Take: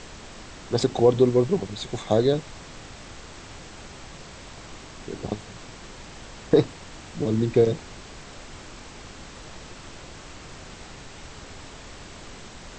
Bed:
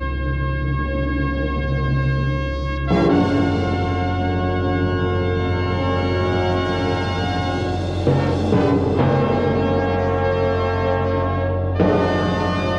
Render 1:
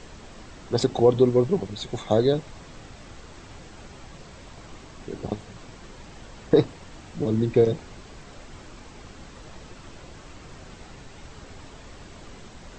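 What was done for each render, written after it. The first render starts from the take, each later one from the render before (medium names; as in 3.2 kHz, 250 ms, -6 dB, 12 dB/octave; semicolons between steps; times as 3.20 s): noise reduction 6 dB, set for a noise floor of -43 dBFS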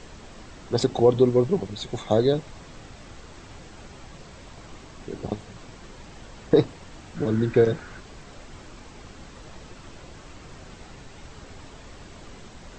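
7.16–8.00 s: peaking EQ 1.5 kHz +13 dB 0.49 oct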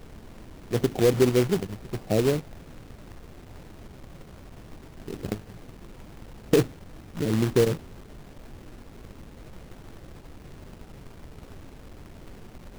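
Gaussian low-pass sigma 13 samples; companded quantiser 4-bit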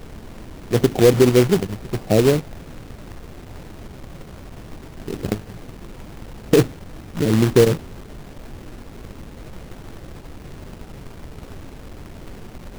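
trim +7.5 dB; peak limiter -1 dBFS, peak gain reduction 2.5 dB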